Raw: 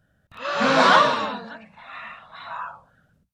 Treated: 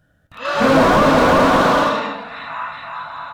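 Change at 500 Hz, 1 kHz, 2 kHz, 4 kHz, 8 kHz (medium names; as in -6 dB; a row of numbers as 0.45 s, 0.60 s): +10.0 dB, +5.5 dB, +4.0 dB, +1.5 dB, +6.0 dB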